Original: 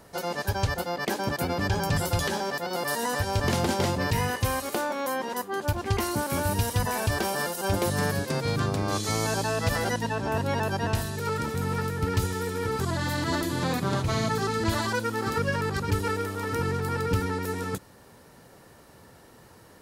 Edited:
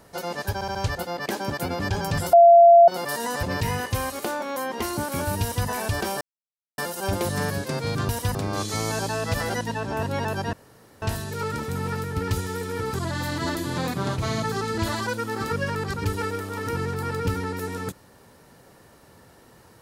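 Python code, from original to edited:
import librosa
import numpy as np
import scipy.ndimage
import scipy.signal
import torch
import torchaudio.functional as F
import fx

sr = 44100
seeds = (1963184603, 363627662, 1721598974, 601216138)

y = fx.edit(x, sr, fx.stutter(start_s=0.54, slice_s=0.07, count=4),
    fx.bleep(start_s=2.12, length_s=0.55, hz=685.0, db=-8.0),
    fx.cut(start_s=3.22, length_s=0.71),
    fx.cut(start_s=5.3, length_s=0.68),
    fx.duplicate(start_s=6.6, length_s=0.26, to_s=8.7),
    fx.insert_silence(at_s=7.39, length_s=0.57),
    fx.insert_room_tone(at_s=10.88, length_s=0.49), tone=tone)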